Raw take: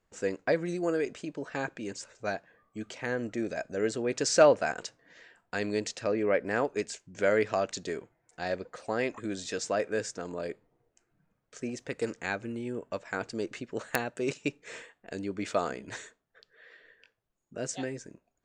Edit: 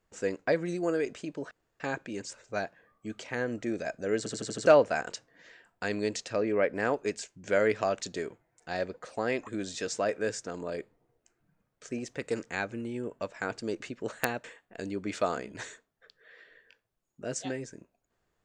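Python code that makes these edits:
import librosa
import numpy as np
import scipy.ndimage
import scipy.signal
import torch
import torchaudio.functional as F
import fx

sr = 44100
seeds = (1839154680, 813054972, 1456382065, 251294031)

y = fx.edit(x, sr, fx.insert_room_tone(at_s=1.51, length_s=0.29),
    fx.stutter_over(start_s=3.89, slice_s=0.08, count=6),
    fx.cut(start_s=14.15, length_s=0.62), tone=tone)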